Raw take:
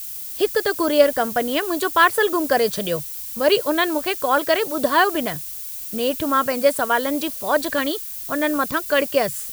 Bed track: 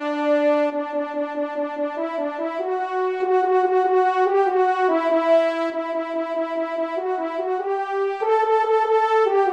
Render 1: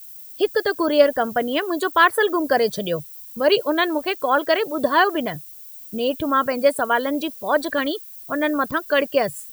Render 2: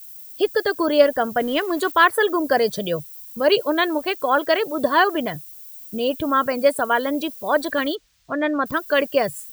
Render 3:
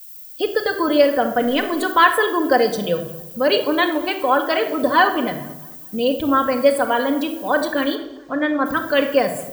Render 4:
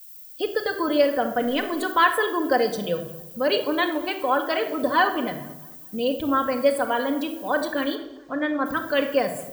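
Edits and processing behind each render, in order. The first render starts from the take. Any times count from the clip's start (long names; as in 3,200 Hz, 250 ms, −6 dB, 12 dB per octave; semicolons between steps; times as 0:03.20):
broadband denoise 13 dB, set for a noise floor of −32 dBFS
0:01.40–0:01.92: converter with a step at zero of −36.5 dBFS; 0:07.95–0:08.66: high-frequency loss of the air 140 metres
tape delay 218 ms, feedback 48%, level −22.5 dB, low-pass 4,800 Hz; rectangular room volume 2,600 cubic metres, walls furnished, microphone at 2 metres
level −5 dB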